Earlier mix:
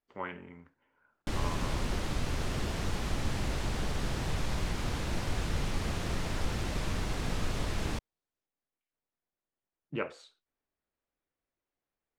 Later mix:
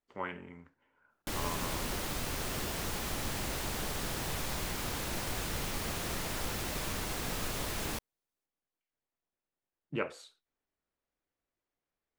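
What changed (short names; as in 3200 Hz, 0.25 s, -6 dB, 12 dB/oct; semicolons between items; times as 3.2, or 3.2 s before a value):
background: add low shelf 210 Hz -8.5 dB; master: remove air absorption 58 m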